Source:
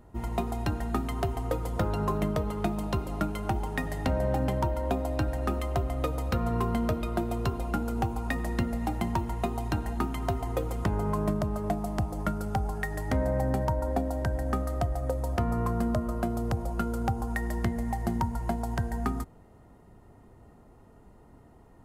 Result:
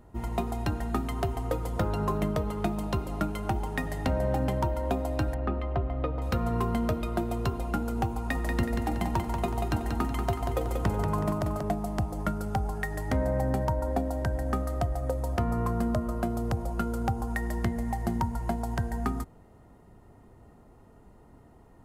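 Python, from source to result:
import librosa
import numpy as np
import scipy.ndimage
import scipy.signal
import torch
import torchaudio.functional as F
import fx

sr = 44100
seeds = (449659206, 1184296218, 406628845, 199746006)

y = fx.air_absorb(x, sr, metres=350.0, at=(5.34, 6.22))
y = fx.echo_feedback(y, sr, ms=186, feedback_pct=41, wet_db=-5.0, at=(8.16, 11.63))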